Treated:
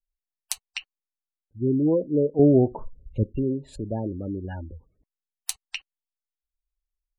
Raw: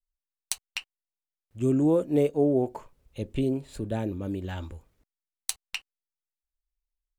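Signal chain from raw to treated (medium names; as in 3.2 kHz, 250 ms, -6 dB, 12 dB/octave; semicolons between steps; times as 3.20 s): spectral gate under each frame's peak -20 dB strong; 2.39–3.24 s: tilt EQ -3.5 dB/octave; trim +1 dB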